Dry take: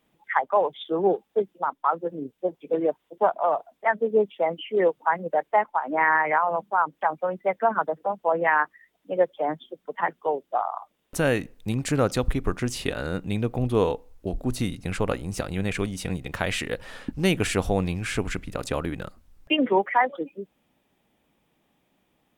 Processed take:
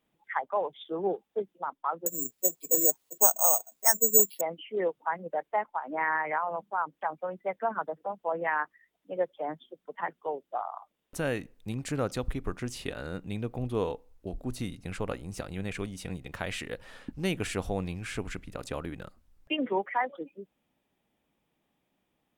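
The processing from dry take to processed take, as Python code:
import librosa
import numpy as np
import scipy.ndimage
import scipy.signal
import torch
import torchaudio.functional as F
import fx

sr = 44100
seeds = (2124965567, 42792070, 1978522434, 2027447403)

y = fx.resample_bad(x, sr, factor=6, down='none', up='zero_stuff', at=(2.06, 4.41))
y = F.gain(torch.from_numpy(y), -8.0).numpy()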